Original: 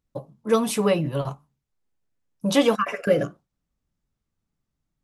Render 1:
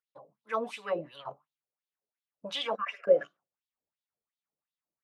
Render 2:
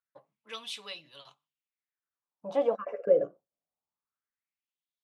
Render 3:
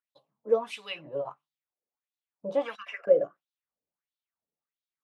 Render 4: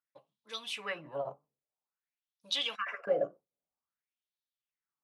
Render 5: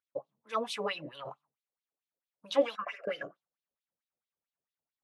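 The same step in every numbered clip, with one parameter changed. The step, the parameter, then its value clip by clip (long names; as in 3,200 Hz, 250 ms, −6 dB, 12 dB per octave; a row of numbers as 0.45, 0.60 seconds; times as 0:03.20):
LFO wah, speed: 2.8, 0.24, 1.5, 0.51, 4.5 Hertz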